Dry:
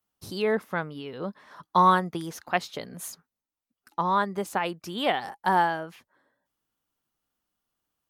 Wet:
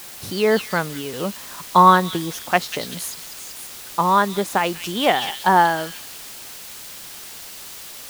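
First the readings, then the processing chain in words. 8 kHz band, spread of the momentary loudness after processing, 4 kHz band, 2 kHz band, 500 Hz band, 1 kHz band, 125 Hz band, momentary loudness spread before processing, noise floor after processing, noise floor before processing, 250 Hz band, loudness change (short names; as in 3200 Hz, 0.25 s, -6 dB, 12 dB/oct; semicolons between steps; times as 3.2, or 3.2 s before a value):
+13.5 dB, 19 LU, +10.5 dB, +8.0 dB, +7.5 dB, +7.5 dB, +7.5 dB, 17 LU, -38 dBFS, under -85 dBFS, +7.5 dB, +7.0 dB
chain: in parallel at -6 dB: requantised 6-bit, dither triangular; on the sum: delay with a stepping band-pass 0.189 s, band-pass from 3700 Hz, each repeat 0.7 oct, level -2 dB; gain +4 dB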